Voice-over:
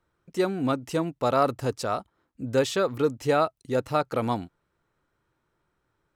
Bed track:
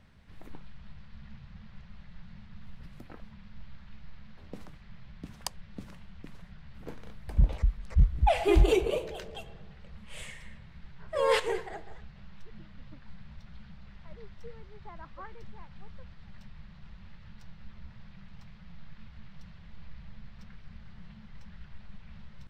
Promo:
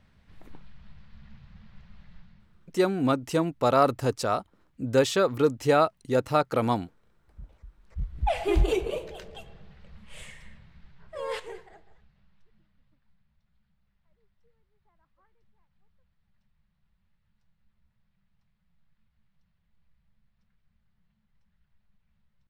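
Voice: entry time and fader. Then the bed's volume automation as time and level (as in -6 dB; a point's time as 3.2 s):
2.40 s, +1.5 dB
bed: 2.15 s -2 dB
2.84 s -22.5 dB
7.66 s -22.5 dB
8.3 s -1.5 dB
10.46 s -1.5 dB
13.32 s -24 dB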